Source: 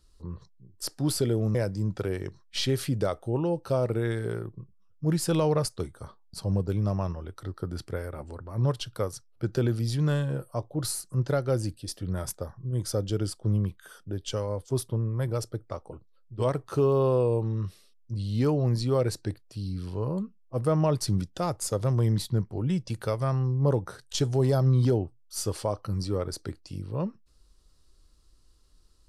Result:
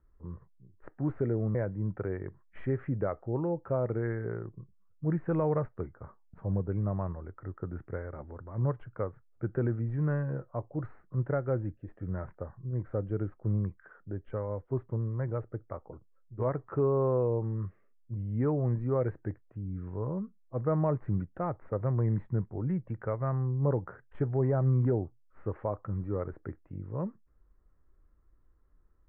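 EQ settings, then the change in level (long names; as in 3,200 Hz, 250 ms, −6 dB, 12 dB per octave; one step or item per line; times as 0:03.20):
Butterworth low-pass 2,000 Hz 48 dB per octave
−4.0 dB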